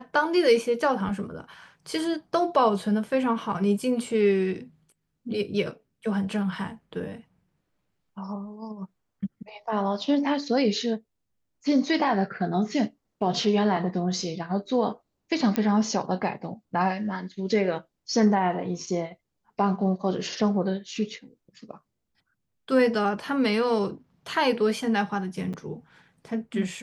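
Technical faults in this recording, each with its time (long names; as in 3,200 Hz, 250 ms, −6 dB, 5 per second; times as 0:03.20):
0:15.56: click −11 dBFS
0:25.53–0:25.54: drop-out 7.2 ms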